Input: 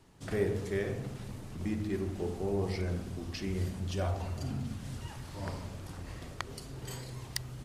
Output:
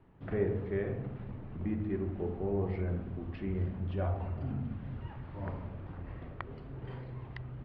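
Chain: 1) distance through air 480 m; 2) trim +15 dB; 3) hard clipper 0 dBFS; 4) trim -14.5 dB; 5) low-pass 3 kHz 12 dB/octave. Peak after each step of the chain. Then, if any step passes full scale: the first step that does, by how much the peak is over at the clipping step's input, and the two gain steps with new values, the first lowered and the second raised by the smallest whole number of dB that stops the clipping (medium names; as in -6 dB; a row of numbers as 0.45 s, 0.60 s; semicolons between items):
-19.0 dBFS, -4.0 dBFS, -4.0 dBFS, -18.5 dBFS, -18.5 dBFS; nothing clips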